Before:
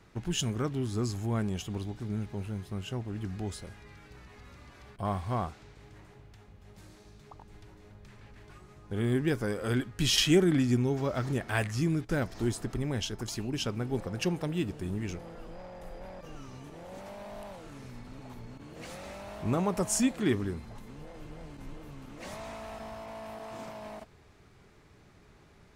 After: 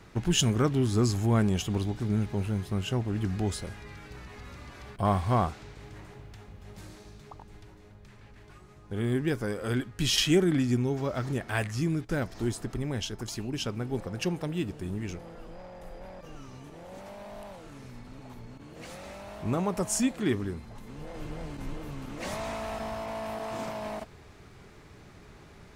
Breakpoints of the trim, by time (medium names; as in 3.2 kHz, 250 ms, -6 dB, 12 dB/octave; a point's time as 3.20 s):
6.84 s +6.5 dB
7.94 s 0 dB
20.71 s 0 dB
21.21 s +7 dB